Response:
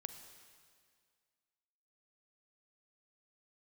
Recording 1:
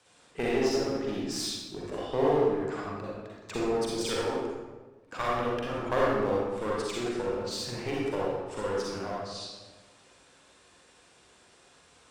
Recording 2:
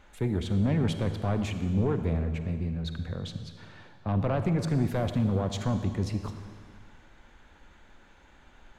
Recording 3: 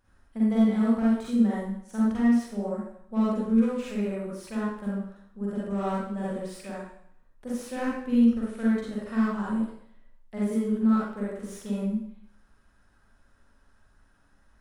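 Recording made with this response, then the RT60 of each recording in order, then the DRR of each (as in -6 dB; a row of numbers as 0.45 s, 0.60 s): 2; 1.3 s, 2.0 s, 0.65 s; -6.0 dB, 8.0 dB, -7.5 dB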